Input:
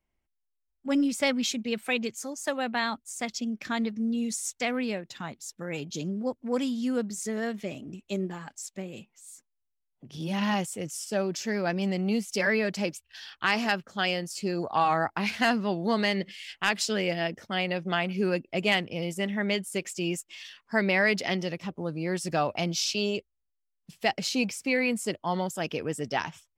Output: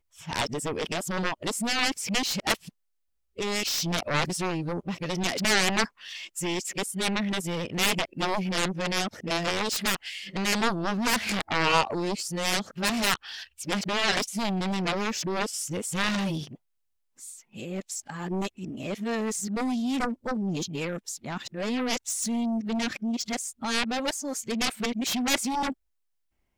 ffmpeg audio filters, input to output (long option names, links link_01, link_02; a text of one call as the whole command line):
ffmpeg -i in.wav -af "areverse,aeval=exprs='0.282*(cos(1*acos(clip(val(0)/0.282,-1,1)))-cos(1*PI/2))+0.00891*(cos(4*acos(clip(val(0)/0.282,-1,1)))-cos(4*PI/2))+0.112*(cos(7*acos(clip(val(0)/0.282,-1,1)))-cos(7*PI/2))':channel_layout=same" out.wav